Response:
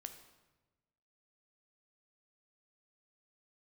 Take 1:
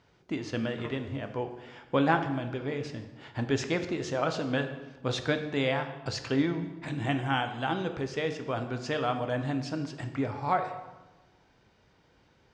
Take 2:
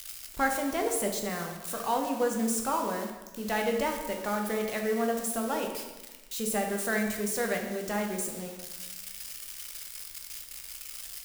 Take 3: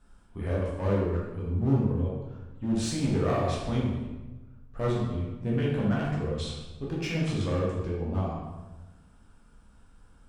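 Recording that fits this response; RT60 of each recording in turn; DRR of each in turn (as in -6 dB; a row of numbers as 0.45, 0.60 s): 1; 1.2, 1.1, 1.1 s; 7.0, 1.5, -5.5 dB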